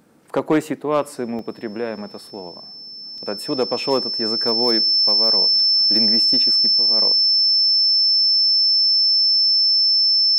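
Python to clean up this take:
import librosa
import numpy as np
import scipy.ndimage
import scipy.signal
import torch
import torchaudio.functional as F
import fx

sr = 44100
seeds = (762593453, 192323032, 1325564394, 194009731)

y = fx.fix_declip(x, sr, threshold_db=-9.5)
y = fx.notch(y, sr, hz=5300.0, q=30.0)
y = fx.fix_interpolate(y, sr, at_s=(1.39, 3.18), length_ms=1.6)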